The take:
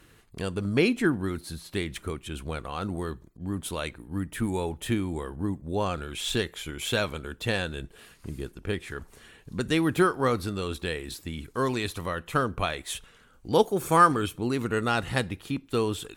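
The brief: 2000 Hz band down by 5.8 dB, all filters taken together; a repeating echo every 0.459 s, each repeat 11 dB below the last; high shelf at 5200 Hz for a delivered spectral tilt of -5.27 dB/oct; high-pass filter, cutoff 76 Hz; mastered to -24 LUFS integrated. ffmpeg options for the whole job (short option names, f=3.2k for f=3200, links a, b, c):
-af "highpass=76,equalizer=f=2k:t=o:g=-7.5,highshelf=f=5.2k:g=-4.5,aecho=1:1:459|918|1377:0.282|0.0789|0.0221,volume=5.5dB"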